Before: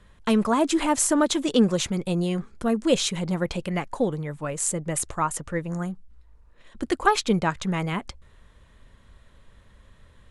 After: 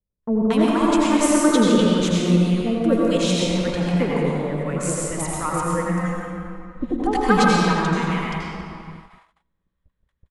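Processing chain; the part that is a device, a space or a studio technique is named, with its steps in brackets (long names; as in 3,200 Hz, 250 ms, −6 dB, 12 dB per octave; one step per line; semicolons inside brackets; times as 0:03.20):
swimming-pool hall (convolution reverb RT60 2.6 s, pre-delay 77 ms, DRR −4.5 dB; high-shelf EQ 4,600 Hz −5 dB)
noise gate −37 dBFS, range −31 dB
0:05.74–0:07.57: comb filter 3.9 ms, depth 73%
multiband delay without the direct sound lows, highs 230 ms, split 760 Hz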